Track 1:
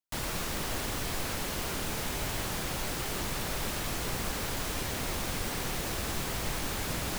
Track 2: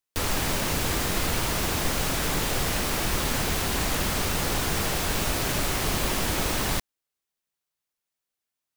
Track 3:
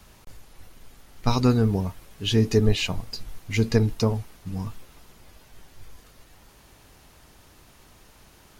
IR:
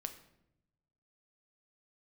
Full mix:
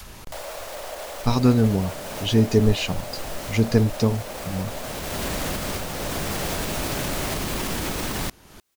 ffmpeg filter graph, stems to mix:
-filter_complex "[0:a]alimiter=level_in=3.5dB:limit=-24dB:level=0:latency=1,volume=-3.5dB,highpass=f=590:t=q:w=4.9,adelay=200,volume=-1.5dB[a];[1:a]alimiter=limit=-19dB:level=0:latency=1:release=49,adelay=1500,volume=0.5dB[b];[2:a]volume=-0.5dB,asplit=2[c][d];[d]apad=whole_len=452552[e];[b][e]sidechaincompress=threshold=-43dB:ratio=3:attack=16:release=506[f];[a][f][c]amix=inputs=3:normalize=0,acompressor=mode=upward:threshold=-29dB:ratio=2.5,adynamicequalizer=threshold=0.0126:dfrequency=220:dqfactor=0.7:tfrequency=220:tqfactor=0.7:attack=5:release=100:ratio=0.375:range=2:mode=boostabove:tftype=bell"

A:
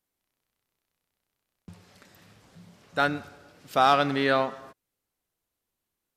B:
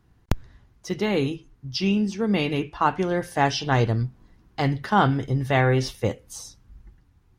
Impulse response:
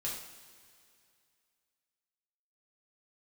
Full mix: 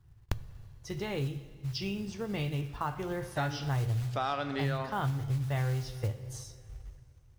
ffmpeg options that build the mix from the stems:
-filter_complex "[0:a]lowpass=8.1k,adelay=400,volume=-5.5dB,asplit=2[a][b];[b]volume=-11dB[c];[1:a]lowshelf=f=160:t=q:w=3:g=8,acrusher=bits=6:mode=log:mix=0:aa=0.000001,volume=-10.5dB,asplit=2[d][e];[e]volume=-8dB[f];[2:a]atrim=start_sample=2205[g];[c][f]amix=inputs=2:normalize=0[h];[h][g]afir=irnorm=-1:irlink=0[i];[a][d][i]amix=inputs=3:normalize=0,acompressor=threshold=-31dB:ratio=3"

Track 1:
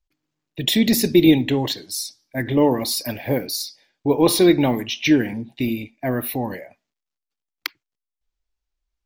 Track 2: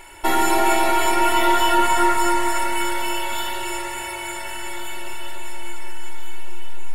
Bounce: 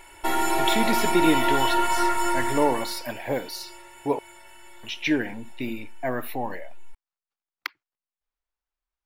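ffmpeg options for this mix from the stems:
-filter_complex "[0:a]equalizer=f=1.1k:w=0.44:g=13.5,volume=-12.5dB,asplit=3[a][b][c];[a]atrim=end=4.19,asetpts=PTS-STARTPTS,afade=t=out:st=4.186:d=0.004:c=hsin[d];[b]atrim=start=4.19:end=4.83,asetpts=PTS-STARTPTS,volume=0[e];[c]atrim=start=4.83,asetpts=PTS-STARTPTS,afade=t=in:d=0.004:c=hsin[f];[d][e][f]concat=n=3:v=0:a=1[g];[1:a]volume=-5.5dB,afade=t=out:st=2.4:d=0.66:silence=0.223872[h];[g][h]amix=inputs=2:normalize=0"

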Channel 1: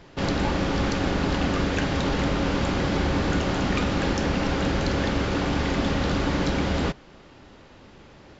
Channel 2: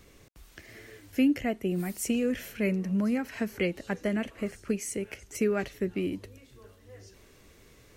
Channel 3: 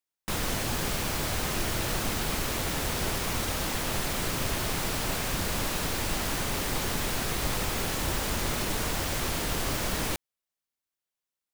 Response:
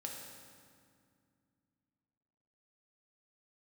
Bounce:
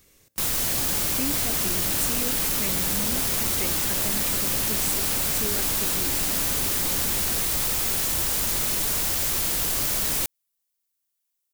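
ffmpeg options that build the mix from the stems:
-filter_complex "[0:a]adelay=500,volume=-13.5dB[a];[1:a]volume=-8dB,asplit=2[b][c];[c]volume=-13dB[d];[2:a]adelay=100,volume=-2.5dB[e];[3:a]atrim=start_sample=2205[f];[d][f]afir=irnorm=-1:irlink=0[g];[a][b][e][g]amix=inputs=4:normalize=0,asoftclip=type=tanh:threshold=-20dB,crystalizer=i=3:c=0"

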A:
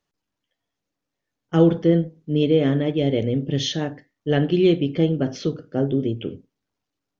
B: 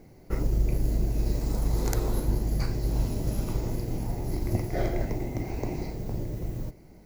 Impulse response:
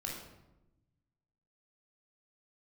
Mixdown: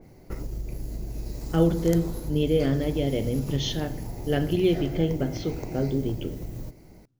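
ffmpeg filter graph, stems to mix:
-filter_complex "[0:a]volume=-6dB,asplit=2[a][b];[b]volume=-12.5dB[c];[1:a]acompressor=threshold=-34dB:ratio=3,adynamicequalizer=threshold=0.00126:dfrequency=2700:dqfactor=0.7:tfrequency=2700:tqfactor=0.7:attack=5:release=100:ratio=0.375:range=2:mode=boostabove:tftype=highshelf,volume=1.5dB[d];[2:a]atrim=start_sample=2205[e];[c][e]afir=irnorm=-1:irlink=0[f];[a][d][f]amix=inputs=3:normalize=0"

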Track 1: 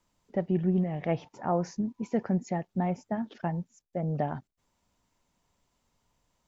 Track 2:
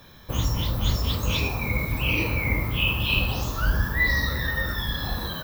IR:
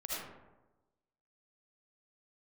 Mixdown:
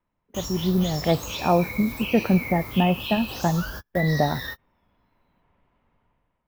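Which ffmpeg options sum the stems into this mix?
-filter_complex "[0:a]lowpass=f=2.5k:w=0.5412,lowpass=f=2.5k:w=1.3066,dynaudnorm=f=300:g=5:m=12.5dB,volume=-3.5dB,asplit=2[a][b];[1:a]bass=f=250:g=-9,treble=f=4k:g=11,acompressor=threshold=-24dB:ratio=6,highshelf=f=11k:g=-11.5,volume=-3.5dB[c];[b]apad=whole_len=239490[d];[c][d]sidechaingate=range=-49dB:threshold=-47dB:ratio=16:detection=peak[e];[a][e]amix=inputs=2:normalize=0"

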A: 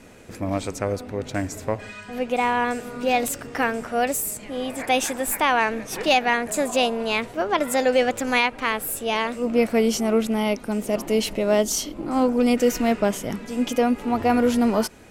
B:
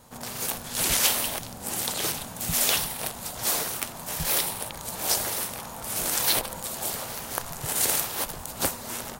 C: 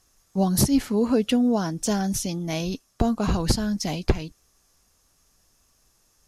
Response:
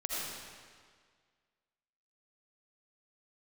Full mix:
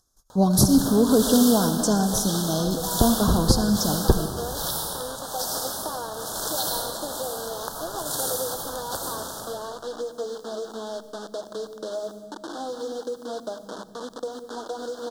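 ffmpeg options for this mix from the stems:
-filter_complex "[0:a]bandpass=f=290:t=q:w=0.7:csg=0,aecho=1:1:6.3:0.41,acrusher=bits=4:mix=0:aa=0.000001,adelay=450,volume=-1dB,asplit=2[a][b];[b]volume=-22.5dB[c];[1:a]adelay=300,volume=-2dB,asplit=2[d][e];[e]volume=-4.5dB[f];[2:a]agate=range=-47dB:threshold=-57dB:ratio=16:detection=peak,volume=0.5dB,asplit=3[g][h][i];[h]volume=-9.5dB[j];[i]apad=whole_len=418642[k];[d][k]sidechaincompress=threshold=-23dB:ratio=8:attack=16:release=390[l];[a][l]amix=inputs=2:normalize=0,highpass=420,lowpass=7k,acompressor=threshold=-30dB:ratio=6,volume=0dB[m];[3:a]atrim=start_sample=2205[n];[c][f][j]amix=inputs=3:normalize=0[o];[o][n]afir=irnorm=-1:irlink=0[p];[g][m][p]amix=inputs=3:normalize=0,acompressor=mode=upward:threshold=-43dB:ratio=2.5,asuperstop=centerf=2300:order=8:qfactor=1.3"

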